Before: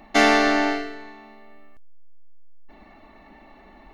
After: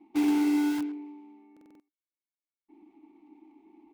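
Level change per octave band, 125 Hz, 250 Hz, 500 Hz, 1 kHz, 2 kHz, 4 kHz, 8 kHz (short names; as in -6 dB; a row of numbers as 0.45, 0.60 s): under -10 dB, -0.5 dB, -18.0 dB, -18.0 dB, -20.5 dB, -17.5 dB, -11.5 dB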